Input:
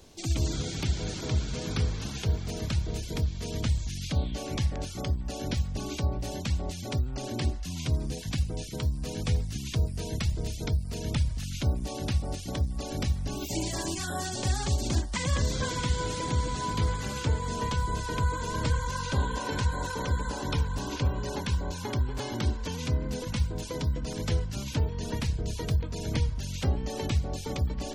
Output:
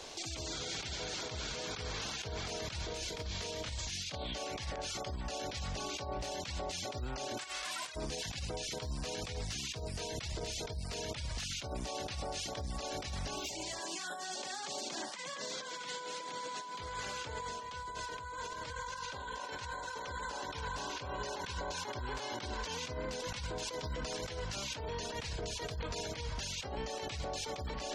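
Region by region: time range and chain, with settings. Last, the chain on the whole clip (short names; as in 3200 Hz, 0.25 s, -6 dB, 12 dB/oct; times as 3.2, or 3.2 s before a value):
2.81–4.15 doubler 32 ms -9 dB + negative-ratio compressor -30 dBFS
7.37–7.94 spectral whitening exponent 0.1 + air absorption 66 m
13.8–16.8 steep high-pass 160 Hz + short-mantissa float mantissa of 4-bit
whole clip: three-band isolator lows -17 dB, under 460 Hz, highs -19 dB, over 8000 Hz; negative-ratio compressor -45 dBFS, ratio -1; limiter -37 dBFS; gain +6.5 dB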